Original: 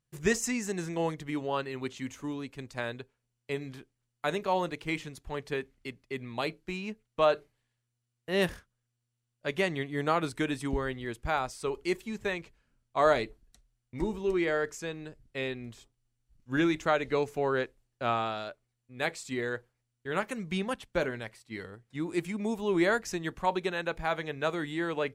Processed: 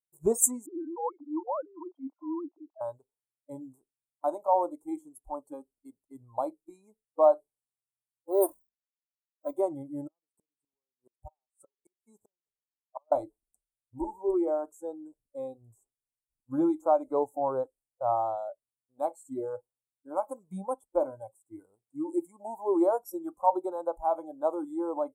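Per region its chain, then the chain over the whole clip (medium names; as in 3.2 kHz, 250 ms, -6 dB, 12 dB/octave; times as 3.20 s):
0.66–2.81 s: formants replaced by sine waves + transient shaper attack -9 dB, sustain +4 dB
8.31–9.53 s: companding laws mixed up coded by A + hum notches 50/100/150/200/250/300 Hz + comb 3 ms, depth 63%
10.04–13.12 s: high-pass 55 Hz 6 dB/octave + inverted gate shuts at -25 dBFS, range -34 dB + upward expansion, over -56 dBFS
whole clip: elliptic band-stop 920–8300 Hz, stop band 40 dB; spectral noise reduction 23 dB; tone controls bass -13 dB, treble +13 dB; trim +6 dB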